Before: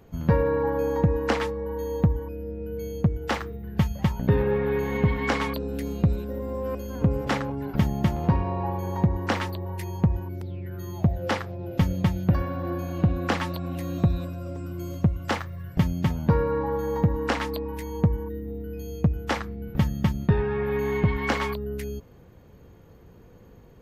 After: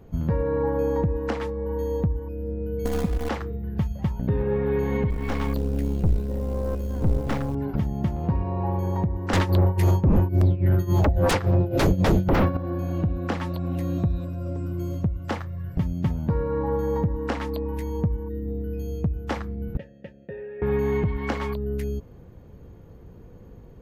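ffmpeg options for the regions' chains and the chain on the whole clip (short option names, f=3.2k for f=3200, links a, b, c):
-filter_complex "[0:a]asettb=1/sr,asplit=3[a][b][c];[a]atrim=end=2.854[d];[b]atrim=start=2.85:end=3.29,asetpts=PTS-STARTPTS,afade=t=in:d=0.004:c=qsin,afade=t=out:st=0.436:d=0.004:c=qsin,acontrast=39,acrusher=bits=5:dc=4:mix=0:aa=0.000001,aecho=1:1:4.1:0.92,atrim=end_sample=19404[e];[c]atrim=start=3.286[f];[d][e]acrossfade=d=0.004:c1=hsin:c2=qsin[g];[g][f]acrossfade=d=0.004:c1=qsin:c2=hsin,asettb=1/sr,asplit=3[h][i][j];[h]atrim=end=5.104[k];[i]atrim=start=5.1:end=7.55,asetpts=PTS-STARTPTS,afade=t=in:d=0.004:c=qsin,afade=t=out:st=2.446:d=0.004:c=qsin,lowshelf=f=110:g=7,acrusher=bits=5:mode=log:mix=0:aa=0.000001,aeval=exprs='(tanh(11.2*val(0)+0.55)-tanh(0.55))/11.2':c=same[l];[j]atrim=start=7.546[m];[k][l]acrossfade=d=0.004:c1=hsin:c2=qsin[n];[n][m]acrossfade=d=0.004:c1=qsin:c2=hsin,asettb=1/sr,asplit=3[o][p][q];[o]atrim=end=9.334[r];[p]atrim=start=9.33:end=12.57,asetpts=PTS-STARTPTS,afade=t=in:d=0.004:c=qsin,afade=t=out:st=3.236:d=0.004:c=qsin,tremolo=f=3.6:d=0.89,aeval=exprs='0.299*sin(PI/2*8.91*val(0)/0.299)':c=same[s];[q]atrim=start=12.566[t];[r][s]acrossfade=d=0.004:c1=hsin:c2=qsin[u];[u][t]acrossfade=d=0.004:c1=qsin:c2=hsin,asettb=1/sr,asplit=3[v][w][x];[v]atrim=end=19.774[y];[w]atrim=start=19.77:end=20.62,asetpts=PTS-STARTPTS,afade=t=in:d=0.004:c=qsin,afade=t=out:st=0.846:d=0.004:c=qsin,asplit=3[z][aa][ab];[z]bandpass=f=530:t=q:w=8,volume=0dB[ac];[aa]bandpass=f=1.84k:t=q:w=8,volume=-6dB[ad];[ab]bandpass=f=2.48k:t=q:w=8,volume=-9dB[ae];[ac][ad][ae]amix=inputs=3:normalize=0,bandreject=f=120.5:t=h:w=4,bandreject=f=241:t=h:w=4,bandreject=f=361.5:t=h:w=4,bandreject=f=482:t=h:w=4,bandreject=f=602.5:t=h:w=4,bandreject=f=723:t=h:w=4,bandreject=f=843.5:t=h:w=4,bandreject=f=964:t=h:w=4,bandreject=f=1.0845k:t=h:w=4,bandreject=f=1.205k:t=h:w=4,bandreject=f=1.3255k:t=h:w=4,bandreject=f=1.446k:t=h:w=4,bandreject=f=1.5665k:t=h:w=4,bandreject=f=1.687k:t=h:w=4,bandreject=f=1.8075k:t=h:w=4[af];[x]atrim=start=20.616[ag];[y][af]acrossfade=d=0.004:c1=hsin:c2=qsin[ah];[ah][ag]acrossfade=d=0.004:c1=qsin:c2=hsin,tiltshelf=f=920:g=4,alimiter=limit=-15dB:level=0:latency=1:release=452,lowshelf=f=61:g=5"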